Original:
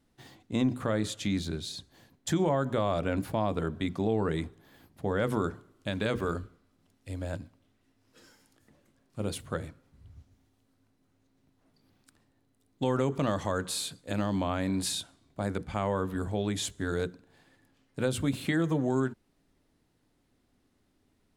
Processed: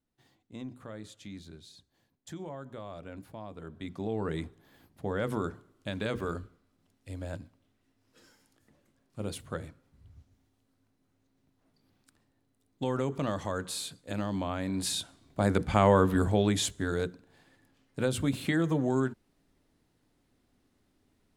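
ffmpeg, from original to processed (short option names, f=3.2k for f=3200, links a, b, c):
-af "volume=8.5dB,afade=t=in:st=3.58:d=0.78:silence=0.266073,afade=t=in:st=14.72:d=1.17:silence=0.266073,afade=t=out:st=15.89:d=1.02:silence=0.375837"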